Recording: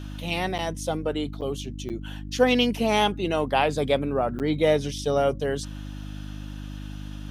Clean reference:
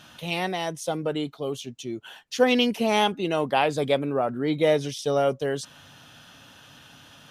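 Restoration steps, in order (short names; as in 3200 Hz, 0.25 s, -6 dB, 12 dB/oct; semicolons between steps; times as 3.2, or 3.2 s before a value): de-hum 50.6 Hz, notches 6; interpolate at 0.58/1.41/1.89/4.39, 8.4 ms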